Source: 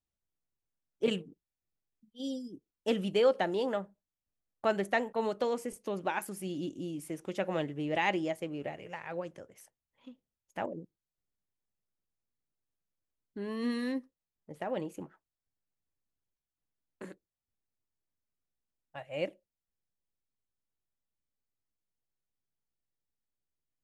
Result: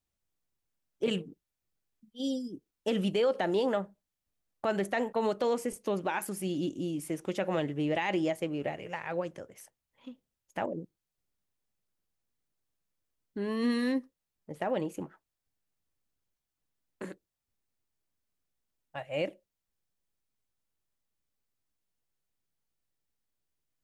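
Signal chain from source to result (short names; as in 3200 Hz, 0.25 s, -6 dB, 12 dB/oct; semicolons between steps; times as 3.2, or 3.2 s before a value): limiter -24.5 dBFS, peak gain reduction 9 dB; gain +4.5 dB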